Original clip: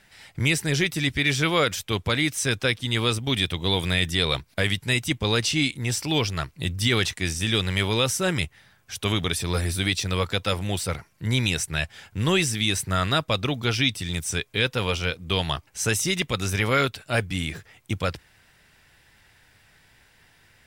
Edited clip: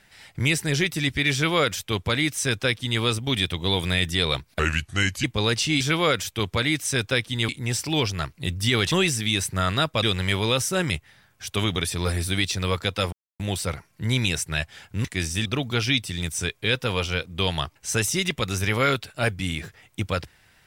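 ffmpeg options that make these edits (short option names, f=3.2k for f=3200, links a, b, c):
-filter_complex "[0:a]asplit=10[a][b][c][d][e][f][g][h][i][j];[a]atrim=end=4.594[k];[b]atrim=start=4.59:end=5.1,asetpts=PTS-STARTPTS,asetrate=34839,aresample=44100[l];[c]atrim=start=5.096:end=5.672[m];[d]atrim=start=1.328:end=3.012[n];[e]atrim=start=5.668:end=7.102[o];[f]atrim=start=12.258:end=13.372[p];[g]atrim=start=7.508:end=10.61,asetpts=PTS-STARTPTS,afade=t=out:st=3.098:d=0.004:c=hsin,apad=pad_dur=0.27[q];[h]atrim=start=10.61:end=12.262,asetpts=PTS-STARTPTS,afade=t=in:d=0.004:c=hsin[r];[i]atrim=start=7.098:end=7.512[s];[j]atrim=start=13.368[t];[k][l]acrossfade=d=0.004:c1=hsin:c2=hsin[u];[u][m]acrossfade=d=0.004:c1=hsin:c2=hsin[v];[v][n]acrossfade=d=0.004:c1=hsin:c2=hsin[w];[w][o]acrossfade=d=0.004:c1=hsin:c2=hsin[x];[x][p]acrossfade=d=0.004:c1=hsin:c2=hsin[y];[q][r]concat=n=2:v=0:a=1[z];[y][z]acrossfade=d=0.004:c1=hsin:c2=hsin[aa];[aa][s]acrossfade=d=0.004:c1=hsin:c2=hsin[ab];[ab][t]acrossfade=d=0.004:c1=hsin:c2=hsin"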